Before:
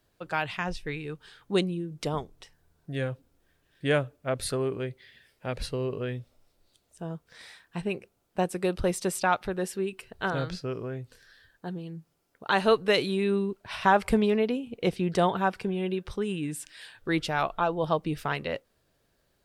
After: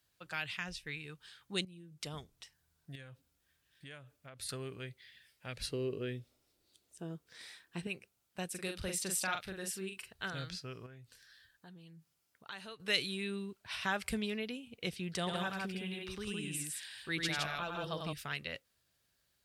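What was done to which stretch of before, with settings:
1.65–2.20 s: fade in, from -13 dB
2.95–4.49 s: compression, threshold -38 dBFS
5.67–7.87 s: peaking EQ 350 Hz +12.5 dB 1.3 oct
8.50–10.13 s: doubling 42 ms -5 dB
10.86–12.80 s: compression 2:1, threshold -44 dBFS
15.17–18.13 s: multi-tap echo 96/163 ms -5/-3 dB
whole clip: dynamic bell 950 Hz, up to -8 dB, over -42 dBFS, Q 1.7; high-pass 47 Hz; amplifier tone stack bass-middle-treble 5-5-5; trim +5 dB

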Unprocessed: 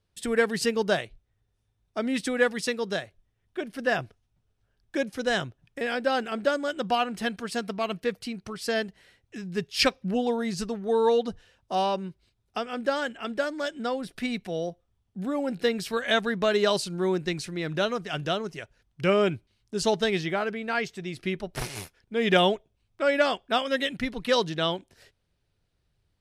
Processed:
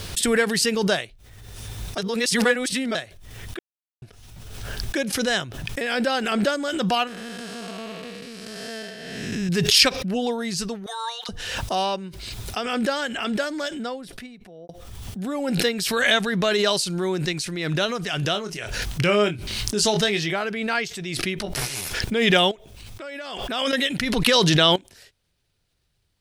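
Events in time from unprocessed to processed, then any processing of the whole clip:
1.98–2.95 s: reverse
3.59–4.02 s: mute
7.07–9.49 s: spectral blur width 430 ms
10.86–11.29 s: high-pass 1 kHz 24 dB/octave
13.50–14.69 s: studio fade out
18.32–20.33 s: doubling 24 ms -7.5 dB
21.40–21.81 s: doubling 15 ms -4 dB
22.51–23.73 s: compression 2.5:1, threshold -42 dBFS
24.26–24.76 s: level flattener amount 100%
whole clip: treble shelf 2.2 kHz +9 dB; swell ahead of each attack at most 31 dB/s

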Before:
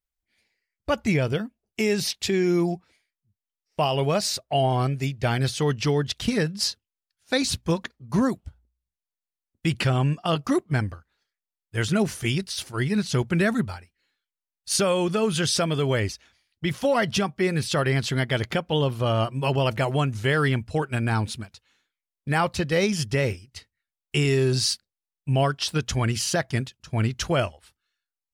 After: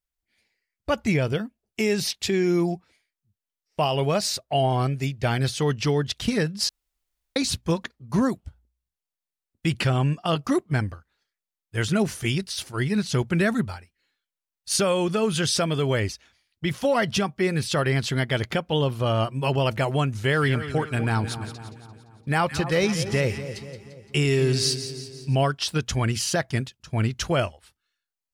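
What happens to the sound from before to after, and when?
6.69–7.36 s: room tone
20.18–25.35 s: two-band feedback delay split 1.2 kHz, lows 241 ms, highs 172 ms, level -11 dB

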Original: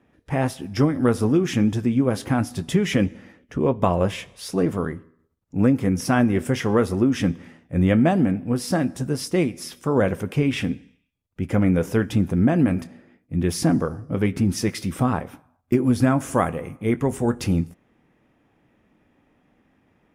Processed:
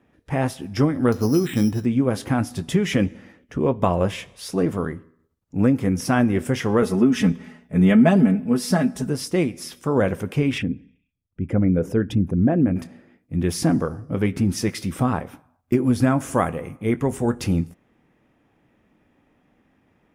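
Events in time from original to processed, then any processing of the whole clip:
1.12–1.85 s: careless resampling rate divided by 8×, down filtered, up hold
6.82–9.10 s: comb 4.7 ms, depth 88%
10.58–12.76 s: resonances exaggerated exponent 1.5

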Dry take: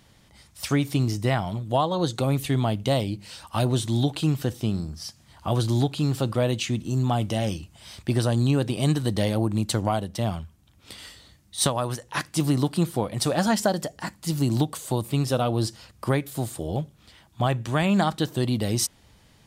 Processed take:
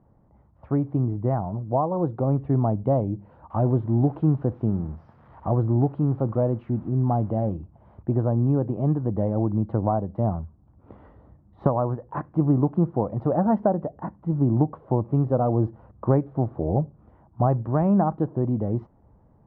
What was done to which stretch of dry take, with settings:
3.50–7.30 s: zero-crossing glitches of -20.5 dBFS
whole clip: low-pass 1 kHz 24 dB/octave; gain riding 2 s; trim +1 dB

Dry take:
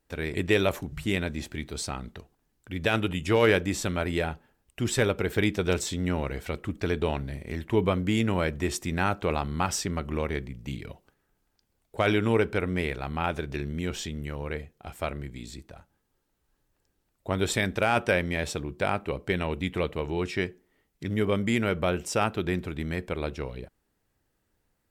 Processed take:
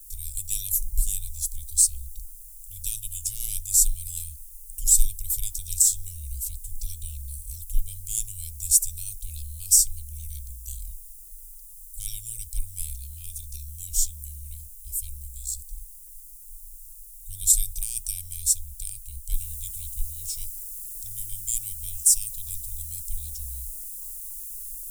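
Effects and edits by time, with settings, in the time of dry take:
19.34 s: noise floor step -68 dB -59 dB
whole clip: inverse Chebyshev band-stop 160–1800 Hz, stop band 80 dB; treble shelf 4.7 kHz -10 dB; loudness maximiser +36 dB; trim -3 dB

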